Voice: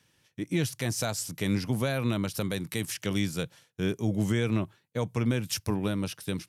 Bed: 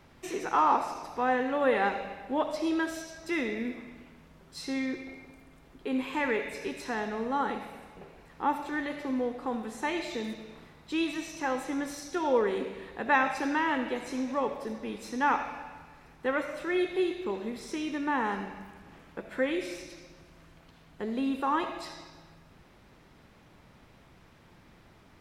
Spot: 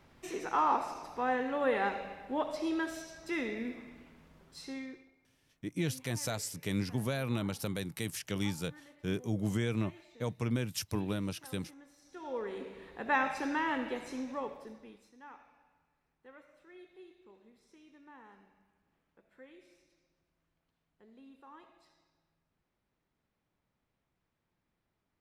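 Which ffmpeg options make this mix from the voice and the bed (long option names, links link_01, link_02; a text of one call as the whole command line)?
ffmpeg -i stem1.wav -i stem2.wav -filter_complex "[0:a]adelay=5250,volume=-5.5dB[link_01];[1:a]volume=14.5dB,afade=type=out:start_time=4.39:duration=0.72:silence=0.112202,afade=type=in:start_time=11.98:duration=1.23:silence=0.112202,afade=type=out:start_time=13.93:duration=1.19:silence=0.0841395[link_02];[link_01][link_02]amix=inputs=2:normalize=0" out.wav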